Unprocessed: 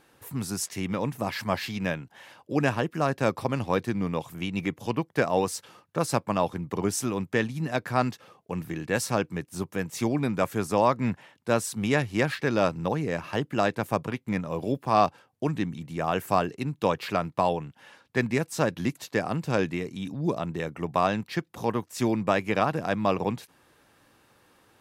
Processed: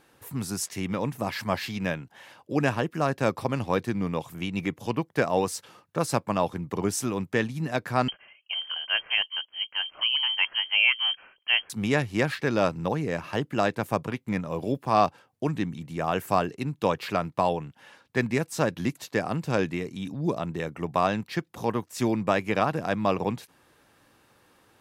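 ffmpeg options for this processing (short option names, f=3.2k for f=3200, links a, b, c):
-filter_complex "[0:a]asettb=1/sr,asplit=3[a][b][c];[a]atrim=end=8.084[d];[b]atrim=start=8.08:end=11.7,asetpts=PTS-STARTPTS,afade=t=in:d=0.004:c=qsin,afade=t=out:st=3.616:d=0.004:c=qsin,lowpass=f=2.8k:t=q:w=0.5098,lowpass=f=2.8k:t=q:w=0.6013,lowpass=f=2.8k:t=q:w=0.9,lowpass=f=2.8k:t=q:w=2.563,afreqshift=-3300[e];[c]atrim=start=11.696[f];[d][e]acrossfade=d=0.004:c1=hsin:c2=qsin[g];[g][f]acrossfade=d=0.004:c1=qsin:c2=hsin"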